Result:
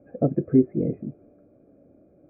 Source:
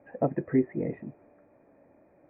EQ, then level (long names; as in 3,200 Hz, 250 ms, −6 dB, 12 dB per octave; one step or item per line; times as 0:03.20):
moving average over 47 samples
+8.0 dB